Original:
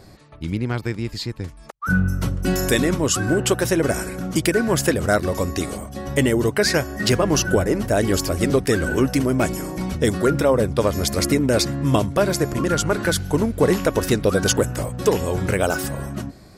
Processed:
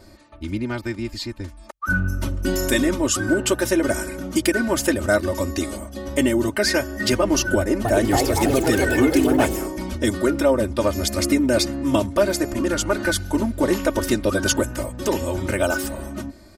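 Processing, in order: comb 3.3 ms, depth 94%; 7.57–9.75 s: ever faster or slower copies 278 ms, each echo +3 st, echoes 2; trim -3.5 dB

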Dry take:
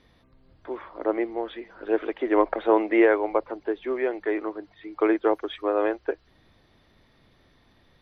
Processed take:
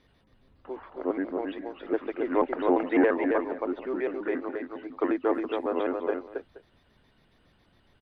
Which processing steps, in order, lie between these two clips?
pitch shift switched off and on -3.5 st, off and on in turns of 69 ms; multi-tap echo 271/473 ms -4.5/-18.5 dB; trim -4 dB

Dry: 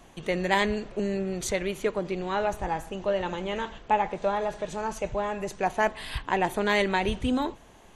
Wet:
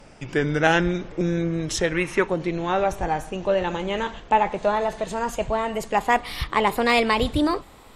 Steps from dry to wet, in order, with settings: gliding tape speed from 79% -> 121%; time-frequency box 1.94–2.27 s, 840–2800 Hz +7 dB; trim +5 dB

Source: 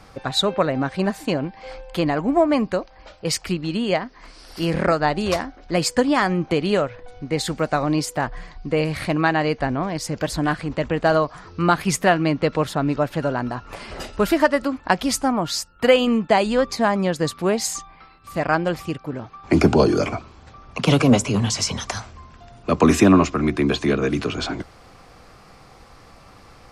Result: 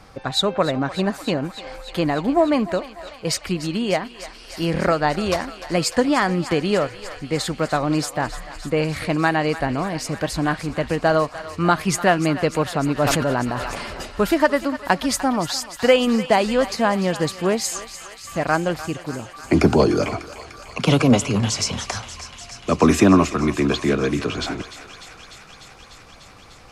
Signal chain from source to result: thinning echo 298 ms, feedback 84%, high-pass 770 Hz, level -13 dB; 12.94–13.93 s: decay stretcher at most 21 dB/s

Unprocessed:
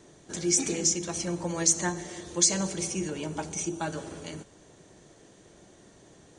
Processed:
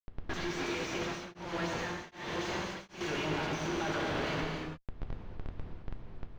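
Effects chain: tilt shelf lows -9.5 dB, about 880 Hz; compression 5:1, threshold -27 dBFS, peak gain reduction 16.5 dB; Schmitt trigger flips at -42 dBFS; distance through air 250 m; gated-style reverb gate 350 ms flat, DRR 0 dB; 0.96–3.01 s: tremolo of two beating tones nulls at 1.3 Hz; trim +1 dB

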